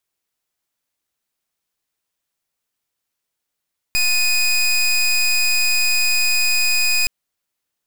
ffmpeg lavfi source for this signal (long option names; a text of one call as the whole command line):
ffmpeg -f lavfi -i "aevalsrc='0.15*(2*lt(mod(2490*t,1),0.21)-1)':duration=3.12:sample_rate=44100" out.wav